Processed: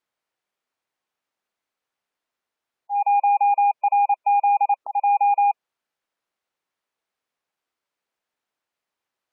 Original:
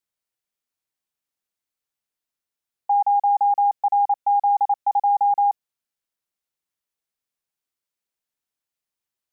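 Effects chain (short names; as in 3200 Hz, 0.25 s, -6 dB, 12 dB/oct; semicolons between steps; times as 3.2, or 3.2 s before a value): auto swell 0.241 s; overdrive pedal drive 18 dB, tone 1000 Hz, clips at -14 dBFS; spectral gate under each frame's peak -25 dB strong; gain +2 dB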